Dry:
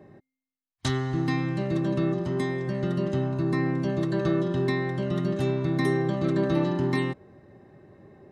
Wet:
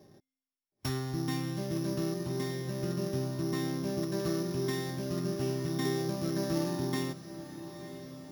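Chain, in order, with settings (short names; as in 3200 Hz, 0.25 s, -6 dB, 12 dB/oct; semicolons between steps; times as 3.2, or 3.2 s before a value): sample sorter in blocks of 8 samples; diffused feedback echo 0.975 s, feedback 58%, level -12.5 dB; gain -7 dB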